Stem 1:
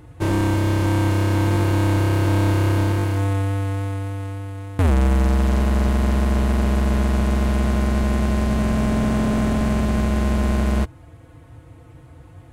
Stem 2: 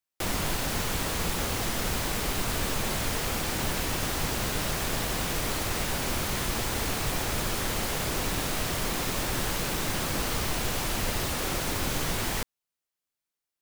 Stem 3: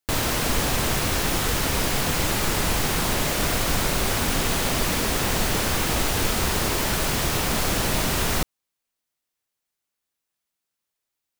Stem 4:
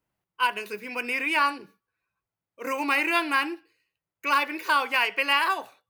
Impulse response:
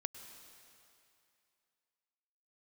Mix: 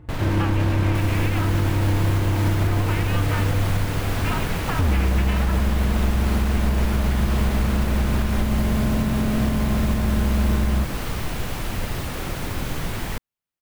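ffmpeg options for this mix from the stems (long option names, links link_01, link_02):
-filter_complex "[0:a]volume=-5.5dB[link_01];[1:a]highshelf=frequency=5700:gain=11.5,adelay=750,volume=-0.5dB[link_02];[2:a]alimiter=limit=-16dB:level=0:latency=1:release=11,volume=-3.5dB[link_03];[3:a]acompressor=threshold=-29dB:ratio=6,aeval=exprs='val(0)*sgn(sin(2*PI*170*n/s))':channel_layout=same,volume=2dB[link_04];[link_01][link_02][link_03][link_04]amix=inputs=4:normalize=0,bass=frequency=250:gain=6,treble=frequency=4000:gain=-14,alimiter=limit=-12dB:level=0:latency=1:release=216"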